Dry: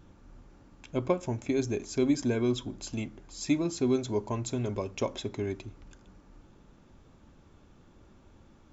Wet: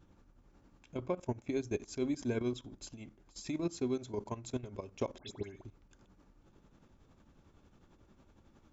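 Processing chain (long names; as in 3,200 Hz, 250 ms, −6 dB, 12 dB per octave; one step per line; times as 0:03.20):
0:01.02–0:01.50: high-shelf EQ 2,700 Hz −4 dB
output level in coarse steps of 15 dB
shaped tremolo triangle 11 Hz, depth 60%
0:05.18–0:05.64: all-pass dispersion highs, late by 106 ms, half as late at 2,200 Hz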